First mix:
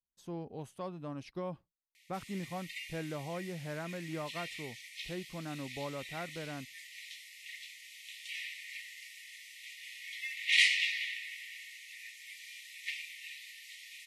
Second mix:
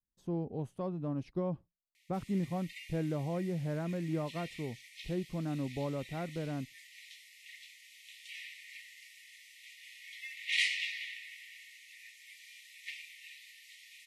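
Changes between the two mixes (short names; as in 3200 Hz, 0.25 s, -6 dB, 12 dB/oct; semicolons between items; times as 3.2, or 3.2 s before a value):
speech: add tilt shelf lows +8 dB, about 830 Hz; background -5.0 dB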